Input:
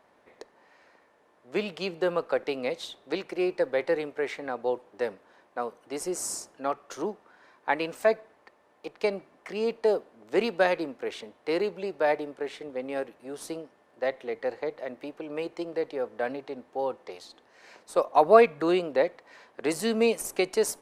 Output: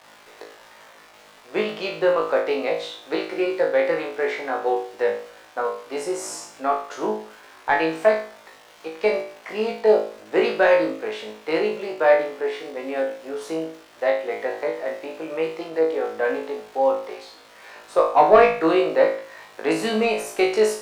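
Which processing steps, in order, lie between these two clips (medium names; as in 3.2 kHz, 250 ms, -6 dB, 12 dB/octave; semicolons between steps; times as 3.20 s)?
crackle 480 per s -39 dBFS; overdrive pedal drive 13 dB, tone 1.7 kHz, clips at -3.5 dBFS; flutter echo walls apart 3.2 m, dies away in 0.47 s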